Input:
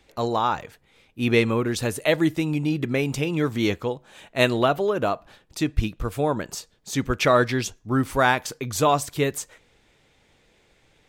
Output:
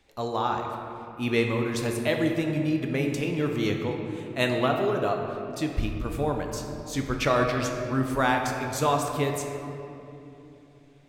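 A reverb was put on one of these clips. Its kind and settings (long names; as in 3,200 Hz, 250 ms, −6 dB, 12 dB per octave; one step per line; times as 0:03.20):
rectangular room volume 130 cubic metres, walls hard, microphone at 0.31 metres
level −5.5 dB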